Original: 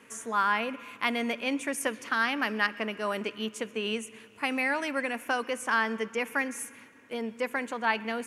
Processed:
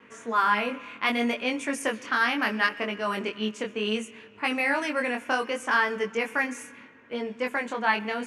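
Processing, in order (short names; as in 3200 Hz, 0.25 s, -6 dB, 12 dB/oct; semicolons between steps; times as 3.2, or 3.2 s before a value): vibrato 1.1 Hz 17 cents; low-pass opened by the level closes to 2800 Hz, open at -24 dBFS; chorus 0.68 Hz, delay 20 ms, depth 4.4 ms; gain +6 dB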